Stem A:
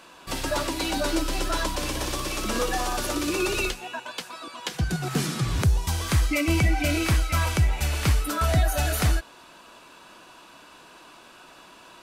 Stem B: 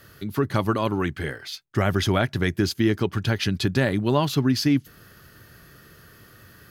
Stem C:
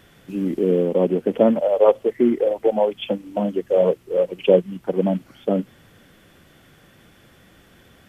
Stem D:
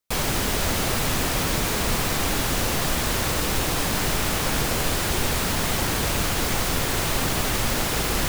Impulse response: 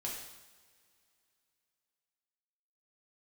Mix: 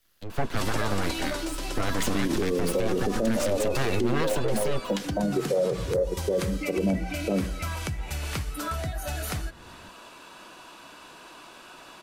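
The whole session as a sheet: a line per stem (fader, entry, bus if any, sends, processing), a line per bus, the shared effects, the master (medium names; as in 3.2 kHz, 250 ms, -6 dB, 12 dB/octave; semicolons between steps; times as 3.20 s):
+2.0 dB, 0.30 s, bus A, no send, compression 10:1, threshold -30 dBFS, peak gain reduction 14.5 dB
+3.0 dB, 0.00 s, bus B, no send, full-wave rectifier; three bands expanded up and down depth 70%
+0.5 dB, 1.80 s, bus A, send -14.5 dB, Chebyshev low-pass 2.1 kHz, order 10; bass shelf 82 Hz +11.5 dB; rotary cabinet horn 5 Hz
mute
bus A: 0.0 dB, hum notches 60/120/180/240 Hz; peak limiter -17.5 dBFS, peak gain reduction 13 dB
bus B: 0.0 dB, peak limiter -15.5 dBFS, peak gain reduction 9 dB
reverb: on, pre-delay 3 ms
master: peak limiter -16.5 dBFS, peak gain reduction 7 dB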